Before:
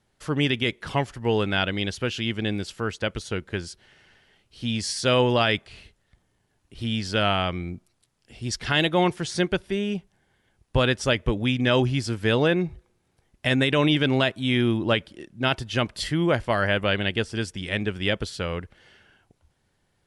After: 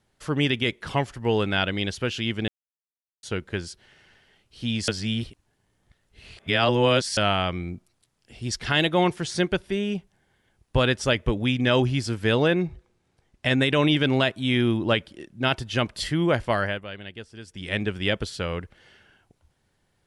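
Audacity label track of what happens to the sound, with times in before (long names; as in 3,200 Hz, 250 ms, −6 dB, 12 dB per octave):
2.480000	3.230000	silence
4.880000	7.170000	reverse
12.670000	13.600000	low-pass filter 8,400 Hz
16.550000	17.730000	duck −14 dB, fades 0.28 s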